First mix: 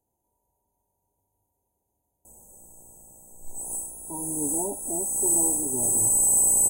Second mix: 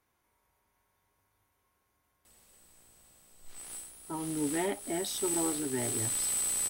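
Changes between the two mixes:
background −11.5 dB
master: remove linear-phase brick-wall band-stop 1,000–6,100 Hz

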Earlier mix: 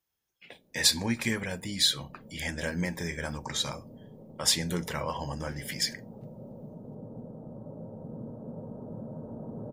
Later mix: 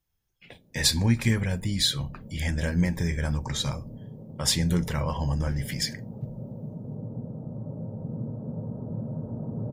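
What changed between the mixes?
speech: remove high-pass filter 91 Hz
master: add parametric band 110 Hz +12 dB 1.8 octaves

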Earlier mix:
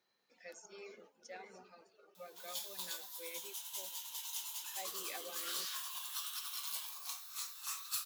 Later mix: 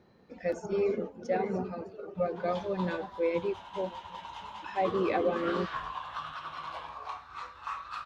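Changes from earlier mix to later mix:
background: add low-pass filter 2,000 Hz 12 dB per octave
master: remove first difference

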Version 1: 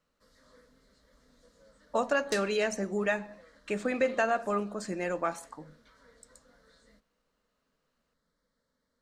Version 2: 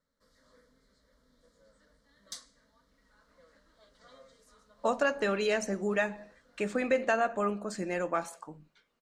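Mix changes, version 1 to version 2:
speech: entry +2.90 s
background −3.5 dB

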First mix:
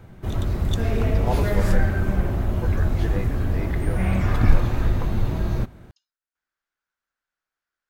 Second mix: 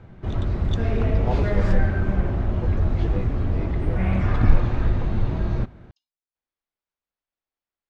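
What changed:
speech: add parametric band 1,500 Hz −14.5 dB 0.68 octaves
master: add high-frequency loss of the air 150 metres

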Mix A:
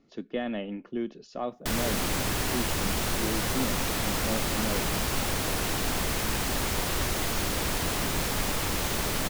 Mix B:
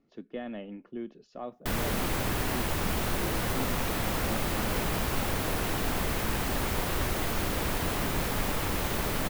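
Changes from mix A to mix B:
speech −6.0 dB
master: add parametric band 6,300 Hz −7 dB 2 octaves

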